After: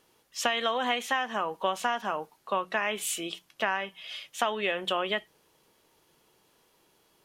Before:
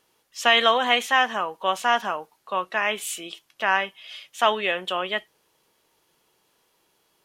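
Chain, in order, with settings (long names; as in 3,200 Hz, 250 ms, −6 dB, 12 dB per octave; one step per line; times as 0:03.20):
downward compressor 8 to 1, threshold −25 dBFS, peak gain reduction 13 dB
low-shelf EQ 430 Hz +5.5 dB
mains-hum notches 60/120/180 Hz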